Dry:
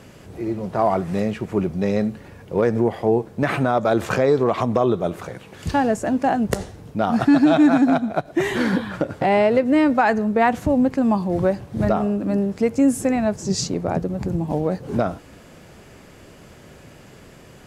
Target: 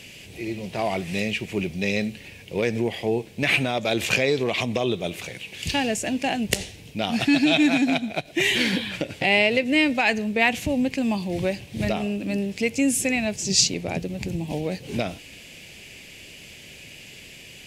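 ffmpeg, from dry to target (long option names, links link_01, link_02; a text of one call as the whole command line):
ffmpeg -i in.wav -af "highshelf=frequency=1800:width_type=q:width=3:gain=11.5,volume=-5dB" out.wav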